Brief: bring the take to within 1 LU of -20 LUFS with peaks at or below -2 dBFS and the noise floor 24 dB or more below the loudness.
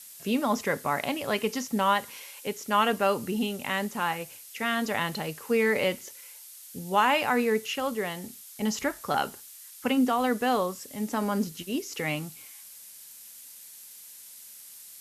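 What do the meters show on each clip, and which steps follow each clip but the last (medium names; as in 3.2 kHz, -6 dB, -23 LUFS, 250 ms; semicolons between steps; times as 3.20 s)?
noise floor -48 dBFS; noise floor target -52 dBFS; loudness -28.0 LUFS; peak level -11.0 dBFS; loudness target -20.0 LUFS
-> noise print and reduce 6 dB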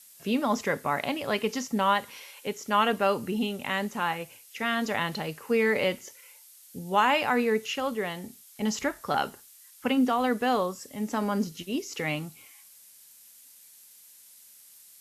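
noise floor -54 dBFS; loudness -28.0 LUFS; peak level -11.5 dBFS; loudness target -20.0 LUFS
-> trim +8 dB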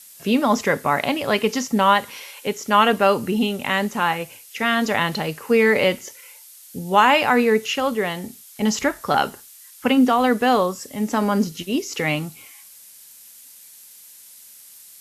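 loudness -20.0 LUFS; peak level -3.5 dBFS; noise floor -46 dBFS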